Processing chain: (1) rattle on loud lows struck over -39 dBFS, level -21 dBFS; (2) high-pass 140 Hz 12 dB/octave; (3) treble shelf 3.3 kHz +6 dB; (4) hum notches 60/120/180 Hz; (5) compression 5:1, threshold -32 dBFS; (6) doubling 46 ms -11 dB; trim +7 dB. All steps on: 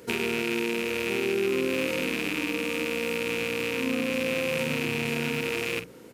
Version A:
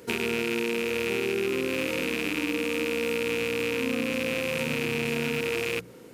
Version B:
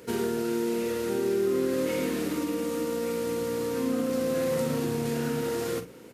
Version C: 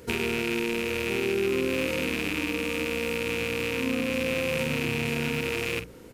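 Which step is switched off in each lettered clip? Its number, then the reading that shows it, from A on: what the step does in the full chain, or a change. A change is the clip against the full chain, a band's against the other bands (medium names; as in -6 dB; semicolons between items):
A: 6, momentary loudness spread change -1 LU; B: 1, 2 kHz band -13.0 dB; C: 2, 125 Hz band +3.5 dB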